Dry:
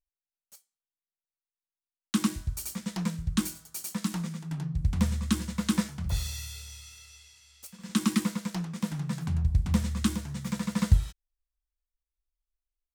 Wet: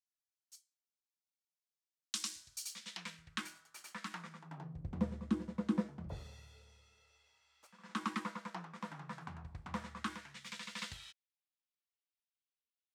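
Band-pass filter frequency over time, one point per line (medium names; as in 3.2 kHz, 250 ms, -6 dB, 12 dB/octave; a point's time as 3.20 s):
band-pass filter, Q 1.3
2.48 s 5.4 kHz
3.50 s 1.6 kHz
4.17 s 1.6 kHz
4.93 s 440 Hz
6.93 s 440 Hz
7.73 s 1.1 kHz
10.00 s 1.1 kHz
10.46 s 3 kHz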